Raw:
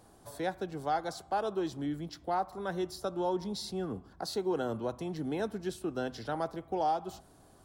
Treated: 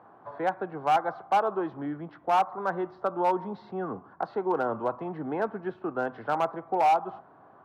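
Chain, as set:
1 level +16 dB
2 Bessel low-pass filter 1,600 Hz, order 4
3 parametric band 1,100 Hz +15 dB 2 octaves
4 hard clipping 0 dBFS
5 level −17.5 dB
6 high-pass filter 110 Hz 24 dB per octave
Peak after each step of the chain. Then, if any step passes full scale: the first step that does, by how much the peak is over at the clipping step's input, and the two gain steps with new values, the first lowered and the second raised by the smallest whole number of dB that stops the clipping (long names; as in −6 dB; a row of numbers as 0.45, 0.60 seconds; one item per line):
−4.5, −5.0, +6.0, 0.0, −17.5, −15.0 dBFS
step 3, 6.0 dB
step 1 +10 dB, step 5 −11.5 dB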